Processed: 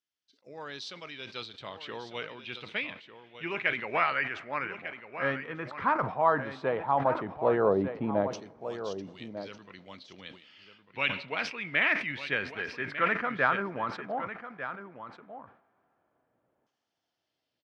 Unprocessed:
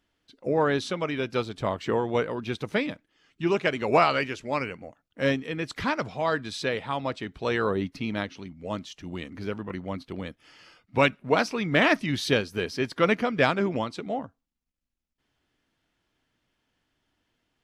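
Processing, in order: high-pass 77 Hz; RIAA curve playback; level rider gain up to 7 dB; LFO band-pass saw down 0.12 Hz 560–6100 Hz; on a send: delay 1198 ms -11.5 dB; on the sum: two-slope reverb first 0.2 s, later 4 s, from -20 dB, DRR 18 dB; decay stretcher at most 110 dB/s

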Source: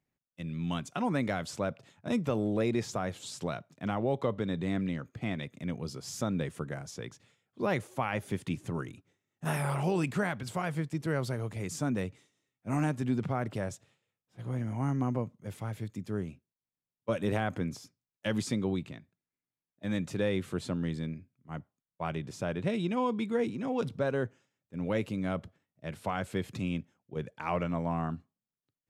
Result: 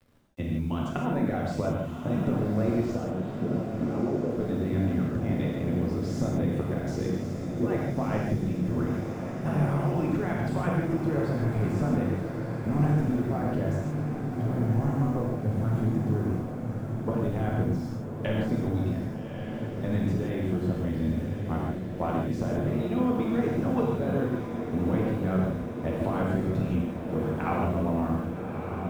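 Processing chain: de-esser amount 100%; tilt EQ -4.5 dB/octave; harmonic-percussive split harmonic -13 dB; compression 10:1, threshold -37 dBFS, peak gain reduction 19 dB; bit crusher 12-bit; 2.95–4.30 s: band-pass filter 290 Hz, Q 0.71; echo that smears into a reverb 1190 ms, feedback 72%, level -7 dB; gated-style reverb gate 190 ms flat, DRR -3 dB; trim +8.5 dB

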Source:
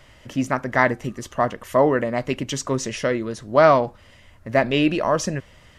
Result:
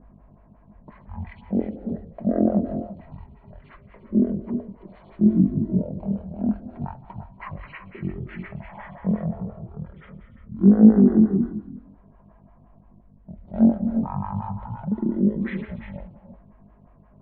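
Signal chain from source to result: wide varispeed 0.336×; peaking EQ 220 Hz +11.5 dB 0.67 oct; hum 50 Hz, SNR 22 dB; level-controlled noise filter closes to 1.3 kHz, open at -13.5 dBFS; gated-style reverb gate 370 ms rising, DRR 7.5 dB; lamp-driven phase shifter 5.7 Hz; trim -7 dB

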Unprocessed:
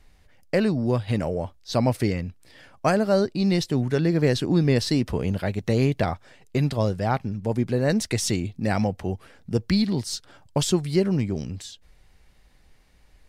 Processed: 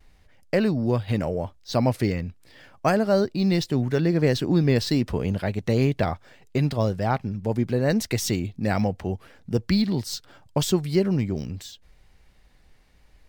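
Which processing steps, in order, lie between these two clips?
vibrato 0.77 Hz 26 cents; decimation joined by straight lines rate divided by 2×

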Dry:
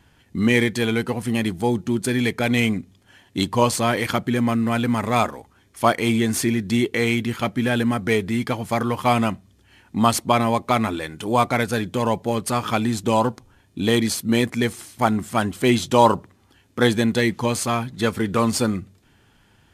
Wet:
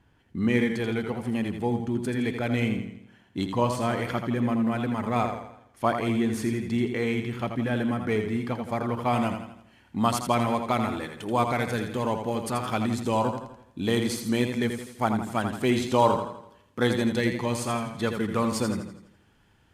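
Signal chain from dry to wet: treble shelf 2.7 kHz -10.5 dB, from 9.13 s -3.5 dB; modulated delay 83 ms, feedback 47%, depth 51 cents, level -7 dB; trim -6 dB

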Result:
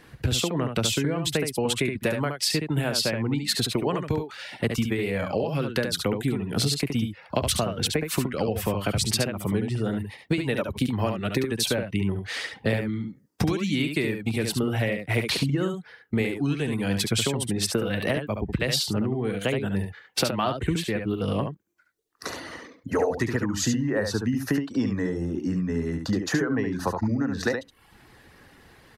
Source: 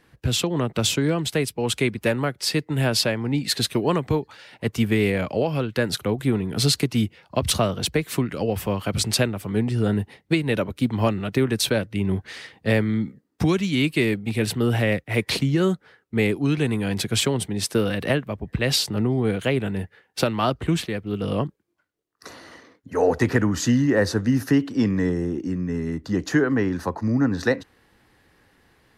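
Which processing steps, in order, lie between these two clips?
compression 6:1, threshold -30 dBFS, peak gain reduction 15.5 dB; reverb removal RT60 0.72 s; delay 71 ms -6 dB; trim +7.5 dB

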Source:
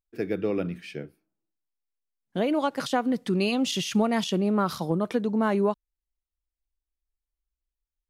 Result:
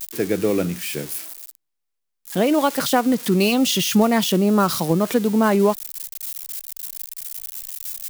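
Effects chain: zero-crossing glitches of -27 dBFS; trim +7 dB

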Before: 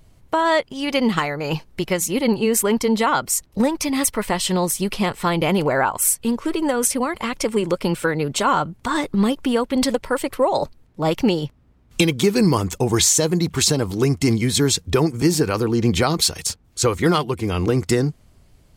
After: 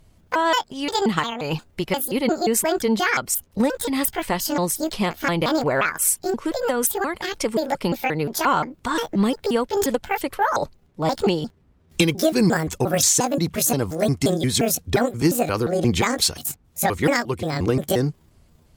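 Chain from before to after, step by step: pitch shift switched off and on +8 st, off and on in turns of 176 ms; Chebyshev shaper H 3 -24 dB, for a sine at -4 dBFS

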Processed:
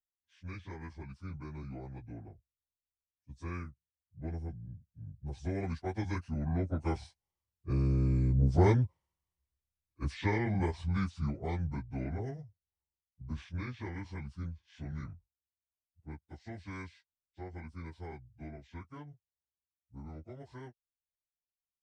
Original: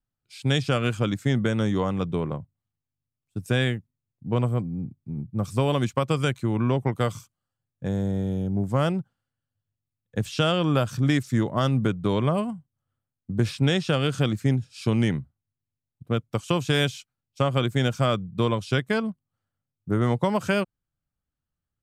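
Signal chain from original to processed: frequency-domain pitch shifter -7 st; Doppler pass-by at 8.61 s, 7 m/s, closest 5.9 m

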